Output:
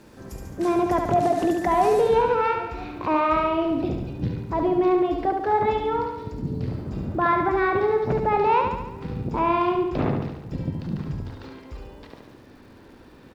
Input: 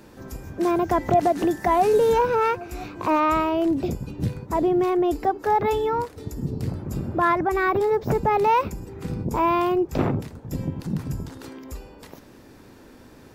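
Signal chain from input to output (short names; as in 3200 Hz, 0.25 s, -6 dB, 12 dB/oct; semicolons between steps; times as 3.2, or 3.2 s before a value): LPF 12000 Hz 24 dB/oct, from 2.01 s 4500 Hz; crackle 490/s -52 dBFS; feedback echo 71 ms, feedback 58%, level -5 dB; gain -2 dB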